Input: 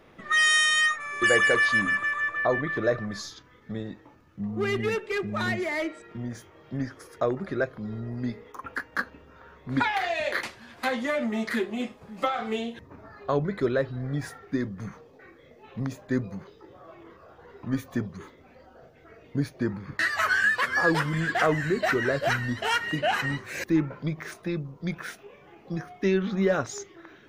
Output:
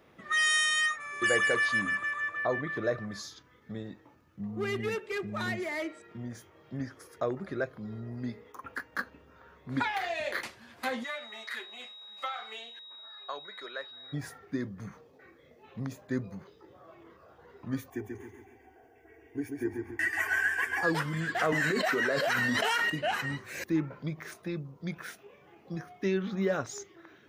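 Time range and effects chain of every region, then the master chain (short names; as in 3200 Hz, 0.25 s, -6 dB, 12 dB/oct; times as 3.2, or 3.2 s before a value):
11.03–14.12 HPF 1000 Hz + high shelf 6500 Hz -8.5 dB + whine 3800 Hz -41 dBFS
17.9–20.83 fixed phaser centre 830 Hz, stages 8 + comb 2.6 ms, depth 54% + feedback echo 0.137 s, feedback 42%, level -4.5 dB
21.52–22.9 HPF 270 Hz + notch 350 Hz, Q 6.4 + fast leveller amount 100%
whole clip: HPF 49 Hz; high shelf 10000 Hz +6.5 dB; gain -5.5 dB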